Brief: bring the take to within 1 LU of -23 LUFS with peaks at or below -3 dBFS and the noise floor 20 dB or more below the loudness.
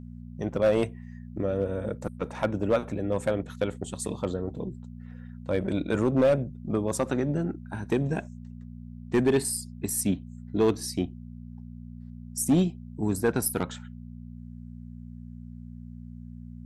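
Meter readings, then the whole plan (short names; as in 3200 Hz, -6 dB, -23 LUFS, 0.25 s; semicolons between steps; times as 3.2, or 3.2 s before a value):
clipped 0.5%; flat tops at -16.0 dBFS; hum 60 Hz; harmonics up to 240 Hz; hum level -39 dBFS; loudness -28.5 LUFS; peak -16.0 dBFS; loudness target -23.0 LUFS
-> clip repair -16 dBFS; de-hum 60 Hz, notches 4; gain +5.5 dB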